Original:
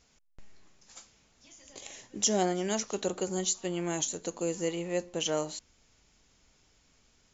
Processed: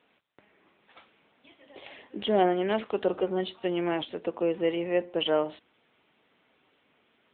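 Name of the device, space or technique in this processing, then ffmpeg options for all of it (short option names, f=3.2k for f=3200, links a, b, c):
telephone: -filter_complex "[0:a]asplit=3[a][b][c];[a]afade=t=out:st=0.98:d=0.02[d];[b]lowpass=f=5.2k:w=0.5412,lowpass=f=5.2k:w=1.3066,afade=t=in:st=0.98:d=0.02,afade=t=out:st=2.04:d=0.02[e];[c]afade=t=in:st=2.04:d=0.02[f];[d][e][f]amix=inputs=3:normalize=0,highpass=260,lowpass=3.6k,volume=6.5dB" -ar 8000 -c:a libopencore_amrnb -b:a 10200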